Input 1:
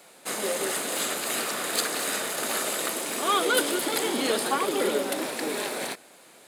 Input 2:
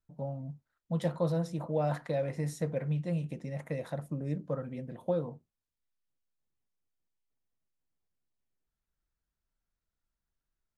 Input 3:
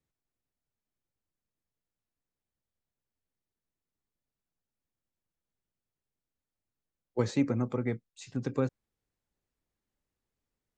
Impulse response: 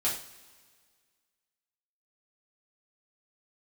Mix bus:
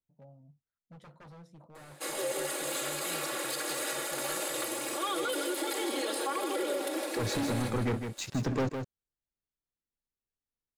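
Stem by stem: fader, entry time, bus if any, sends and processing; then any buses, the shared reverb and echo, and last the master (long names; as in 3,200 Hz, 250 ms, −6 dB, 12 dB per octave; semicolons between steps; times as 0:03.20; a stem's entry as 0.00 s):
−8.0 dB, 1.75 s, no bus, no send, echo send −10 dB, low shelf with overshoot 280 Hz −7 dB, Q 3; comb filter 3.6 ms, depth 82%
−17.0 dB, 0.00 s, bus A, no send, no echo send, wave folding −29 dBFS
−3.5 dB, 0.00 s, bus A, no send, echo send −13.5 dB, leveller curve on the samples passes 5
bus A: 0.0 dB, high-shelf EQ 9,700 Hz −6 dB; downward compressor 1.5 to 1, threshold −39 dBFS, peak gain reduction 6.5 dB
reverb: not used
echo: single-tap delay 157 ms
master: brickwall limiter −23.5 dBFS, peak gain reduction 10 dB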